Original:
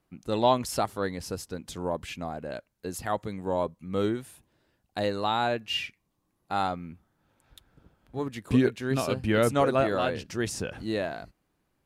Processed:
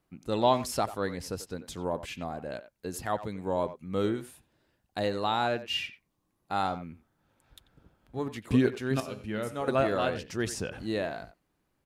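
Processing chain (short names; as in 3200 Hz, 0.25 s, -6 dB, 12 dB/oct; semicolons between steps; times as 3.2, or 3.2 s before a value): 9–9.68 resonator 210 Hz, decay 0.76 s, harmonics all, mix 70%; speakerphone echo 90 ms, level -13 dB; gain -1.5 dB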